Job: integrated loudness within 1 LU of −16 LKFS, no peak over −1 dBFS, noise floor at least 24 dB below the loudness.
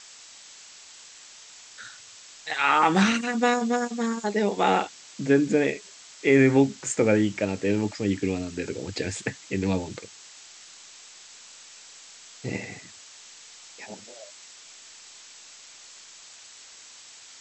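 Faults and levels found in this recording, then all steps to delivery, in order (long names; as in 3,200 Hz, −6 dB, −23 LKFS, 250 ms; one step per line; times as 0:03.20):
background noise floor −48 dBFS; target noise floor −49 dBFS; integrated loudness −24.5 LKFS; sample peak −6.0 dBFS; target loudness −16.0 LKFS
→ noise reduction from a noise print 6 dB
level +8.5 dB
brickwall limiter −1 dBFS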